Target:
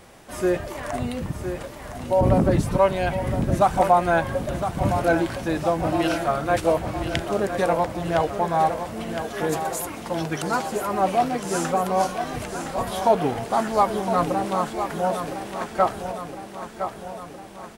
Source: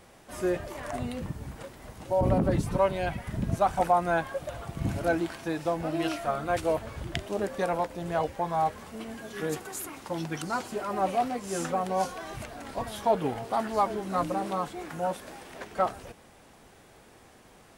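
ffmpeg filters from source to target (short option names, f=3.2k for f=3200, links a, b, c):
-af "aecho=1:1:1012|2024|3036|4048|5060|6072|7084:0.355|0.213|0.128|0.0766|0.046|0.0276|0.0166,volume=6dB"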